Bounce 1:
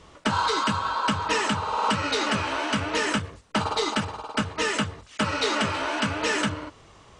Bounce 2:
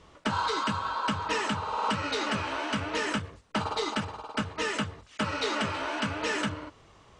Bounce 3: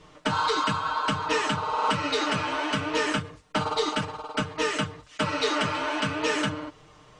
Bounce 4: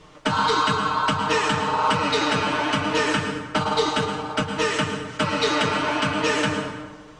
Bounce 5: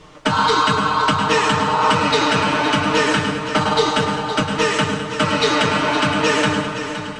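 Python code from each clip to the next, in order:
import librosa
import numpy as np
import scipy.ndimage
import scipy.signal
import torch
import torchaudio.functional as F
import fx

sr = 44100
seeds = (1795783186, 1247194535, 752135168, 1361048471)

y1 = fx.high_shelf(x, sr, hz=7300.0, db=-6.0)
y1 = y1 * librosa.db_to_amplitude(-4.5)
y2 = y1 + 0.78 * np.pad(y1, (int(6.6 * sr / 1000.0), 0))[:len(y1)]
y2 = y2 * librosa.db_to_amplitude(1.5)
y3 = fx.rev_plate(y2, sr, seeds[0], rt60_s=1.3, hf_ratio=0.65, predelay_ms=95, drr_db=5.5)
y3 = y3 * librosa.db_to_amplitude(3.5)
y4 = fx.echo_feedback(y3, sr, ms=516, feedback_pct=53, wet_db=-10.5)
y4 = y4 * librosa.db_to_amplitude(4.5)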